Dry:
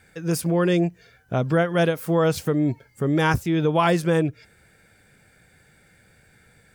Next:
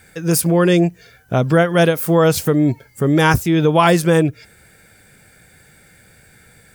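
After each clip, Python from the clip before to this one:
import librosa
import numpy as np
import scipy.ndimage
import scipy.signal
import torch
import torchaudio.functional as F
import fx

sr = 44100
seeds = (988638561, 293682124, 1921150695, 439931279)

y = fx.high_shelf(x, sr, hz=7600.0, db=9.0)
y = y * 10.0 ** (6.5 / 20.0)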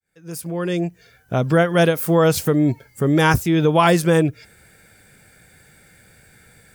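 y = fx.fade_in_head(x, sr, length_s=1.62)
y = y * 10.0 ** (-2.0 / 20.0)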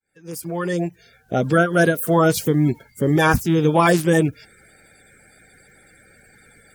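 y = fx.spec_quant(x, sr, step_db=30)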